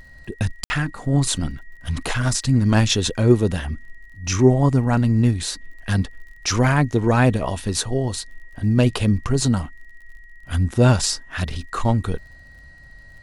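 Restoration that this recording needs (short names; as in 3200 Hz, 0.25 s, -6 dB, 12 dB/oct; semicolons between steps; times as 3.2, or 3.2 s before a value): de-click; notch 1900 Hz, Q 30; room tone fill 0.64–0.7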